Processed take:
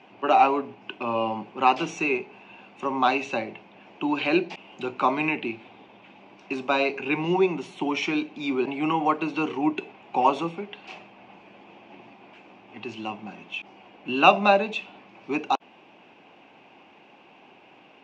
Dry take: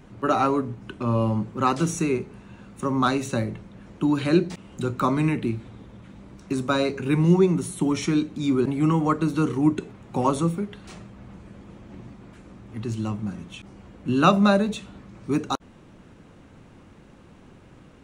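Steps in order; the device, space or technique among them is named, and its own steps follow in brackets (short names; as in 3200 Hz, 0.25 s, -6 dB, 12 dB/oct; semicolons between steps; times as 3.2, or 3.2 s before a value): phone earpiece (speaker cabinet 480–4400 Hz, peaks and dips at 510 Hz -6 dB, 780 Hz +6 dB, 1300 Hz -9 dB, 1800 Hz -6 dB, 2600 Hz +9 dB, 4000 Hz -7 dB); gain +4.5 dB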